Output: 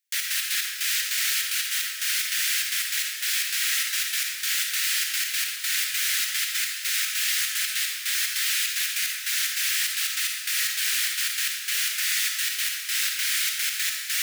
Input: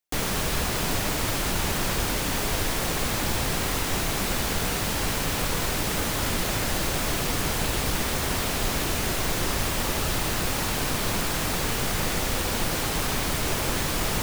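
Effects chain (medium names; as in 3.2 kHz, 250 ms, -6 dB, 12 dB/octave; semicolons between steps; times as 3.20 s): steep high-pass 1.6 kHz 48 dB/octave; trance gate "xx.x.x..xx.x" 149 bpm -12 dB; reverberation RT60 0.90 s, pre-delay 15 ms, DRR 2 dB; trim +4.5 dB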